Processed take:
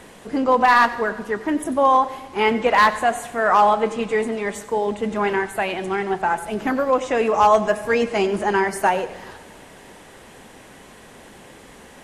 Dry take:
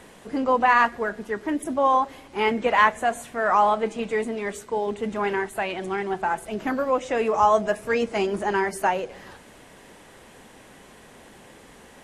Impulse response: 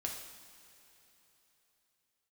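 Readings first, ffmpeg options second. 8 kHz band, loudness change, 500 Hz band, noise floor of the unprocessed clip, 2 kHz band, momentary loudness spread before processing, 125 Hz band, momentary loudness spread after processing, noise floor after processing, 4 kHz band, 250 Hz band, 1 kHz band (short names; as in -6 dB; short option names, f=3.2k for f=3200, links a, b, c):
+4.5 dB, +4.0 dB, +4.0 dB, -49 dBFS, +3.5 dB, 10 LU, +4.0 dB, 9 LU, -45 dBFS, +5.0 dB, +4.0 dB, +4.0 dB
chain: -filter_complex "[0:a]asoftclip=type=hard:threshold=-11.5dB,asplit=2[a][b];[1:a]atrim=start_sample=2205,adelay=92[c];[b][c]afir=irnorm=-1:irlink=0,volume=-14.5dB[d];[a][d]amix=inputs=2:normalize=0,volume=4dB"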